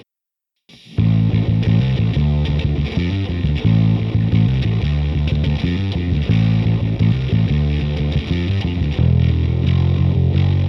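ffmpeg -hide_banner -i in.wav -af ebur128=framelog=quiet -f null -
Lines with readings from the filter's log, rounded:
Integrated loudness:
  I:         -17.4 LUFS
  Threshold: -27.5 LUFS
Loudness range:
  LRA:         0.8 LU
  Threshold: -37.6 LUFS
  LRA low:   -18.0 LUFS
  LRA high:  -17.2 LUFS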